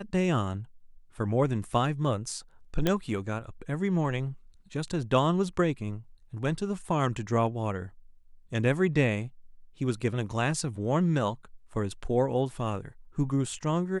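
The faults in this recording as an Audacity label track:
2.870000	2.870000	pop -11 dBFS

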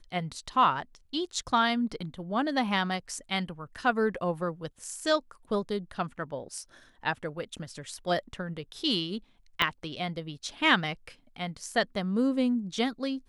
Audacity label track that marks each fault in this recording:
9.620000	9.620000	pop -11 dBFS

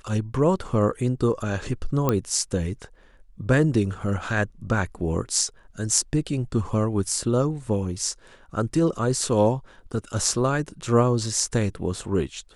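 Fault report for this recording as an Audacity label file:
2.090000	2.090000	pop -8 dBFS

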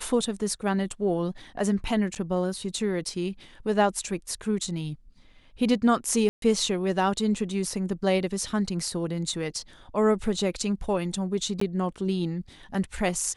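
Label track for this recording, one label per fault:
2.150000	2.160000	dropout 7.2 ms
6.290000	6.420000	dropout 132 ms
11.600000	11.610000	dropout 14 ms

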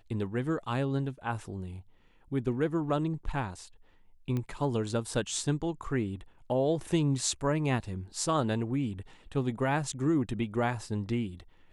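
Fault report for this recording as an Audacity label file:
4.370000	4.370000	pop -22 dBFS

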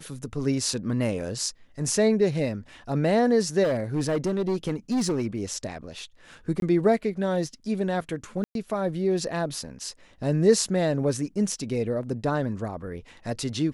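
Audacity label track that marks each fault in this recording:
3.630000	5.270000	clipped -21 dBFS
6.600000	6.620000	dropout 22 ms
8.440000	8.550000	dropout 112 ms

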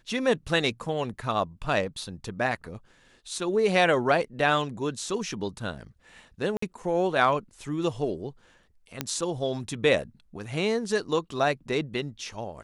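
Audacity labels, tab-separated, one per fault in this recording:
6.570000	6.620000	dropout 54 ms
9.010000	9.010000	pop -11 dBFS

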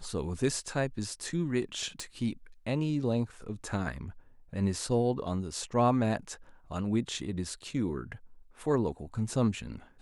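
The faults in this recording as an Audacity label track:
2.000000	2.000000	pop

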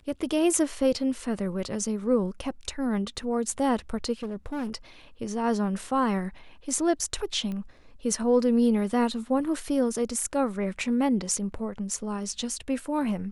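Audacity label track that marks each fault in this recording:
4.220000	4.700000	clipped -28 dBFS
7.520000	7.520000	pop -24 dBFS

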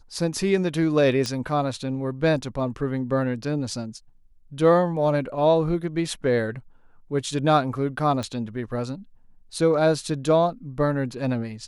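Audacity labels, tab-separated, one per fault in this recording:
1.260000	1.260000	pop -14 dBFS
8.230000	8.230000	pop -18 dBFS

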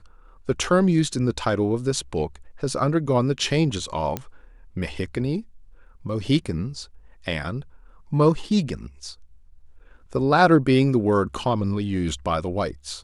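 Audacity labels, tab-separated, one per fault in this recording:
4.170000	4.170000	pop -12 dBFS

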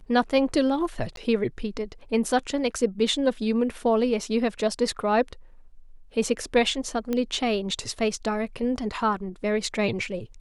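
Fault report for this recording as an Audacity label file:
1.160000	1.170000	dropout 12 ms
7.130000	7.130000	pop -14 dBFS

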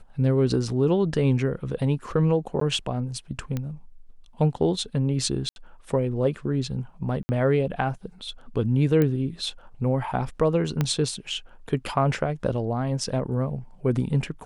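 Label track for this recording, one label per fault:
2.600000	2.610000	dropout 13 ms
3.570000	3.570000	pop -16 dBFS
5.490000	5.560000	dropout 71 ms
7.230000	7.290000	dropout 60 ms
9.020000	9.020000	pop -12 dBFS
10.810000	10.810000	pop -10 dBFS

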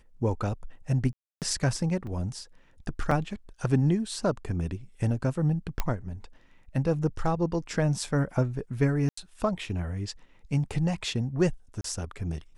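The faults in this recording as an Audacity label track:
1.130000	1.420000	dropout 288 ms
2.070000	2.070000	dropout 2.7 ms
3.110000	3.110000	dropout 4 ms
5.800000	5.800000	pop -12 dBFS
9.090000	9.170000	dropout 84 ms
11.810000	11.840000	dropout 33 ms

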